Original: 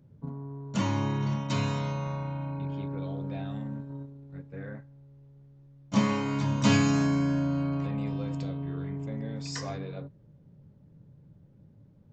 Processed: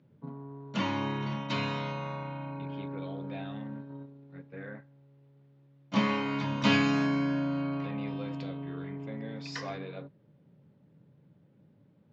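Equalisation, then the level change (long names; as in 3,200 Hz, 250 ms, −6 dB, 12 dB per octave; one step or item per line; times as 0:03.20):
high-pass filter 180 Hz 12 dB per octave
high-frequency loss of the air 190 metres
parametric band 3,100 Hz +7.5 dB 2.2 octaves
−1.0 dB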